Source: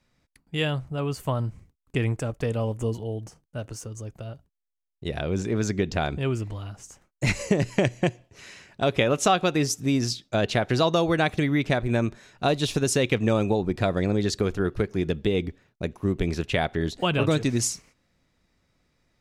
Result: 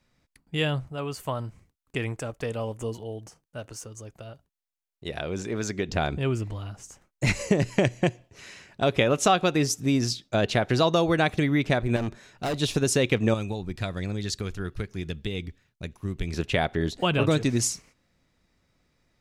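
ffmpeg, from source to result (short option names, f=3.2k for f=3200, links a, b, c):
-filter_complex "[0:a]asettb=1/sr,asplit=3[a][b][c];[a]atrim=end=0.884[d];[b]atrim=start=0.88:end=5.89,asetpts=PTS-STARTPTS,afade=t=in:d=0.004:c=qsin,afade=t=out:st=5.006:d=0.004:c=qsin,lowshelf=f=340:g=-8[e];[c]atrim=start=5.886[f];[d][e]acrossfade=d=0.004:c1=hsin:c2=qsin[g];[g][f]acrossfade=d=0.004:c1=qsin:c2=hsin,asettb=1/sr,asplit=3[h][i][j];[h]atrim=end=11.964[k];[i]atrim=start=11.96:end=12.54,asetpts=PTS-STARTPTS,afade=t=in:d=0.004:c=qsin,afade=t=out:st=0.576:d=0.004:c=qsin,asoftclip=type=hard:threshold=-25dB[l];[j]atrim=start=12.536[m];[k][l]acrossfade=d=0.004:c1=hsin:c2=qsin[n];[n][m]acrossfade=d=0.004:c1=qsin:c2=hsin,asettb=1/sr,asplit=3[o][p][q];[o]atrim=end=13.344[r];[p]atrim=start=13.34:end=16.34,asetpts=PTS-STARTPTS,afade=t=in:d=0.004:c=qsin,afade=t=out:st=2.996:d=0.004:c=qsin,equalizer=f=480:w=0.37:g=-11.5[s];[q]atrim=start=16.336[t];[r][s]acrossfade=d=0.004:c1=hsin:c2=qsin[u];[u][t]acrossfade=d=0.004:c1=qsin:c2=hsin"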